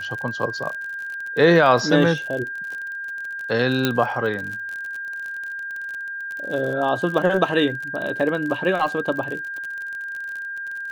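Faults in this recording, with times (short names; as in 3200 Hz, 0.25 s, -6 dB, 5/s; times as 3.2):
crackle 44/s -28 dBFS
tone 1600 Hz -28 dBFS
3.85 pop -5 dBFS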